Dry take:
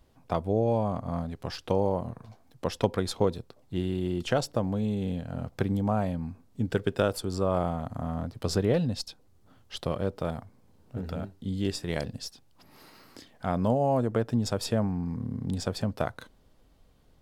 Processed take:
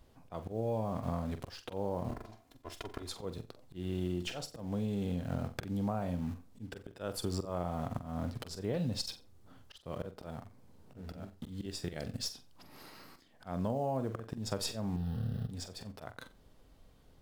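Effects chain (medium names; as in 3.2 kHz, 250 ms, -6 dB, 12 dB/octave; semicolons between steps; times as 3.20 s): 2.09–3.09 s: comb filter that takes the minimum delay 2.9 ms; in parallel at -10 dB: bit crusher 7-bit; on the sum: slow attack 395 ms; 14.96–15.49 s: static phaser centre 1.5 kHz, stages 8; on a send: flutter echo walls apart 7.7 m, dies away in 0.25 s; on the sum: compression 16:1, threshold -30 dBFS, peak gain reduction 12.5 dB; 11.83–12.23 s: band-stop 1 kHz, Q 5.2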